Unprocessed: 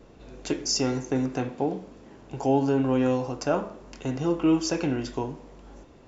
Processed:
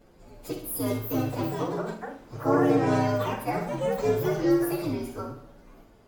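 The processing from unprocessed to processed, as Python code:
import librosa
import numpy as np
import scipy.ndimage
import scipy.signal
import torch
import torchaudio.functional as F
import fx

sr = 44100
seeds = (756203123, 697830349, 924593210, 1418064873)

y = fx.partial_stretch(x, sr, pct=125)
y = fx.echo_feedback(y, sr, ms=64, feedback_pct=45, wet_db=-7.5)
y = fx.echo_pitch(y, sr, ms=507, semitones=4, count=2, db_per_echo=-3.0)
y = y * librosa.db_to_amplitude(-1.5)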